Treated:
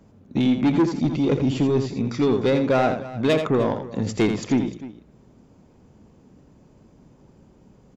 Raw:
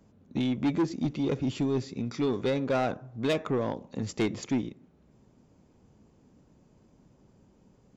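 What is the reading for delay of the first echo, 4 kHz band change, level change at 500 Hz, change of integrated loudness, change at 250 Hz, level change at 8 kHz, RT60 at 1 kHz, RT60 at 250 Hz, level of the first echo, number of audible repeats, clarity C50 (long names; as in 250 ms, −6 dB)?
83 ms, +6.0 dB, +8.5 dB, +8.0 dB, +8.0 dB, can't be measured, no reverb audible, no reverb audible, −8.0 dB, 2, no reverb audible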